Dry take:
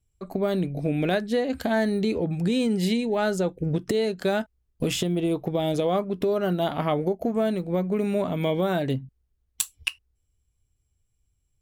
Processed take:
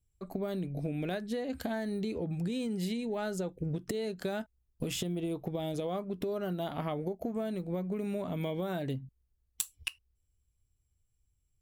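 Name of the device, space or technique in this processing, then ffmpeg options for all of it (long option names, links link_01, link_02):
ASMR close-microphone chain: -af "lowshelf=frequency=220:gain=3.5,acompressor=threshold=-24dB:ratio=6,highshelf=frequency=8900:gain=6,volume=-7dB"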